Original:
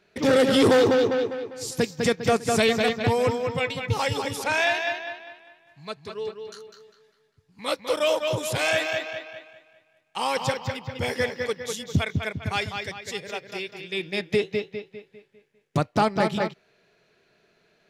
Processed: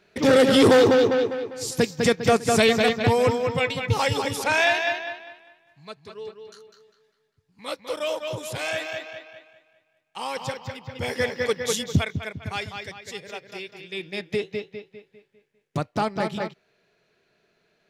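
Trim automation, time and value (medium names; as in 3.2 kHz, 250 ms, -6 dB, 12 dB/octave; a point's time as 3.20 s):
4.98 s +2.5 dB
5.95 s -5 dB
10.74 s -5 dB
11.77 s +7 dB
12.18 s -3.5 dB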